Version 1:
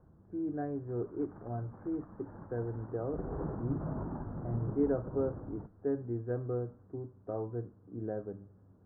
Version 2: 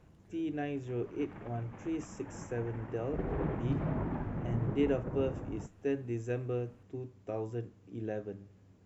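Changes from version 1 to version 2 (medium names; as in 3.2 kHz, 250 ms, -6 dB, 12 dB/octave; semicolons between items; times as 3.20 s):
background +3.5 dB; master: remove steep low-pass 1.5 kHz 48 dB/octave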